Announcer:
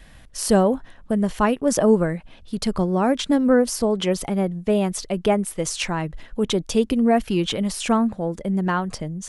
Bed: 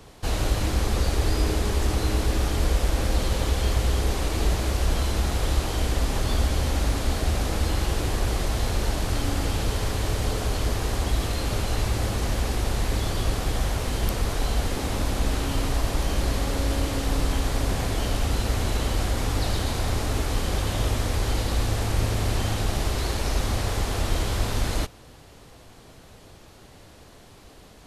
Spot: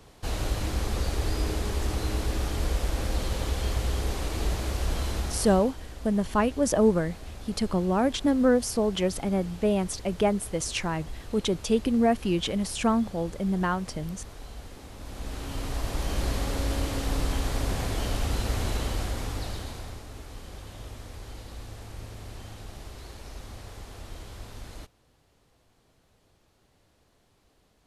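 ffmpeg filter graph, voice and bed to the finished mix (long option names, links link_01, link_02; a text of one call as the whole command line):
ffmpeg -i stem1.wav -i stem2.wav -filter_complex "[0:a]adelay=4950,volume=-4.5dB[link_01];[1:a]volume=9dB,afade=type=out:start_time=5.13:duration=0.63:silence=0.237137,afade=type=in:start_time=14.97:duration=1.27:silence=0.199526,afade=type=out:start_time=18.69:duration=1.34:silence=0.211349[link_02];[link_01][link_02]amix=inputs=2:normalize=0" out.wav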